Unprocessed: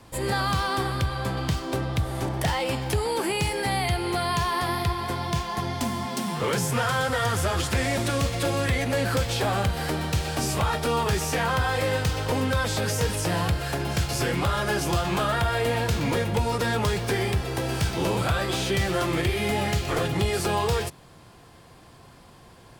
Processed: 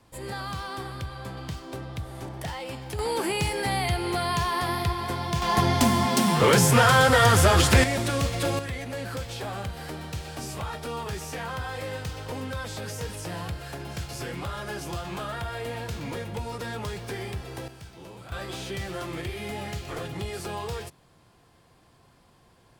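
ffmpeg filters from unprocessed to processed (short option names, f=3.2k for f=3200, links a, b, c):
-af "asetnsamples=n=441:p=0,asendcmd='2.99 volume volume -1dB;5.42 volume volume 7dB;7.84 volume volume -1dB;8.59 volume volume -9dB;17.68 volume volume -19.5dB;18.32 volume volume -9dB',volume=-9dB"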